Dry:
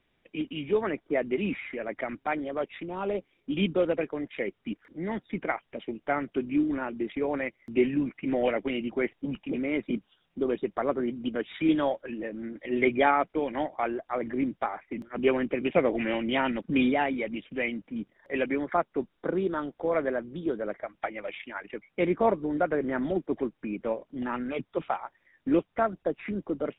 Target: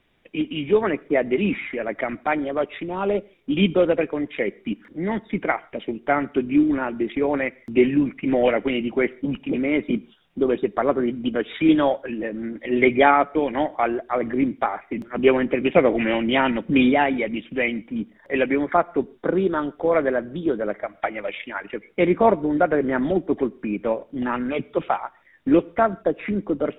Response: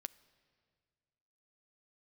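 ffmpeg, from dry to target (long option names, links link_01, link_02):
-filter_complex "[0:a]asplit=2[link_01][link_02];[1:a]atrim=start_sample=2205,afade=type=out:start_time=0.17:duration=0.01,atrim=end_sample=7938,asetrate=33516,aresample=44100[link_03];[link_02][link_03]afir=irnorm=-1:irlink=0,volume=10dB[link_04];[link_01][link_04]amix=inputs=2:normalize=0,volume=-3dB"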